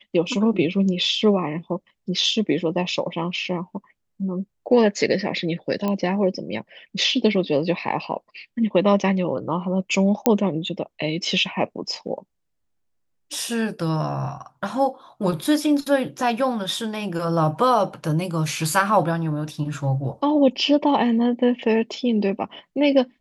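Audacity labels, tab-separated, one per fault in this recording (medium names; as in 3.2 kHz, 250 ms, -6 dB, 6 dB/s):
5.880000	5.880000	pop -13 dBFS
10.260000	10.260000	pop -4 dBFS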